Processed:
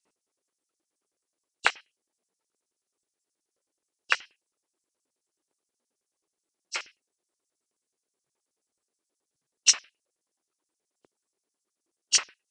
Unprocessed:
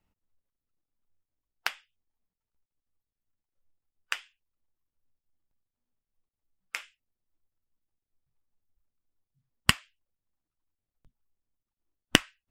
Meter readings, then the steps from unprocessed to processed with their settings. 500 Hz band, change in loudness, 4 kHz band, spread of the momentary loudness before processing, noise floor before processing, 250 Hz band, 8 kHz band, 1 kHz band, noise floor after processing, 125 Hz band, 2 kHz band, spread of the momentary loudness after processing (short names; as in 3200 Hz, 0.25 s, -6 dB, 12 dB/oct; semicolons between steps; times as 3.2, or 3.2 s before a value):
-5.5 dB, +3.5 dB, +2.0 dB, 14 LU, under -85 dBFS, under -20 dB, +11.5 dB, +1.5 dB, under -85 dBFS, under -30 dB, +1.0 dB, 14 LU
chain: nonlinear frequency compression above 2700 Hz 1.5:1; LFO high-pass square 9.4 Hz 380–5800 Hz; gain +8 dB